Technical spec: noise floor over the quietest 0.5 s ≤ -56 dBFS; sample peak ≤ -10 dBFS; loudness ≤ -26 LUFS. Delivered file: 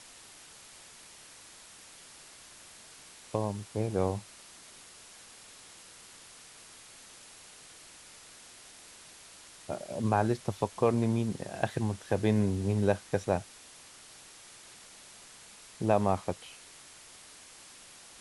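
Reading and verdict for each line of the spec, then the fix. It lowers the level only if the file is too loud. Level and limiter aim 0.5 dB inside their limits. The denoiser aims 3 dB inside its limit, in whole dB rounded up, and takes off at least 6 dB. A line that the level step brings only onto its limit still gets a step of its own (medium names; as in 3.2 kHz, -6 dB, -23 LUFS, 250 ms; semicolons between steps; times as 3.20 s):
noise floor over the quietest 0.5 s -53 dBFS: fail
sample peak -11.5 dBFS: pass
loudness -31.0 LUFS: pass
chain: noise reduction 6 dB, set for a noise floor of -53 dBFS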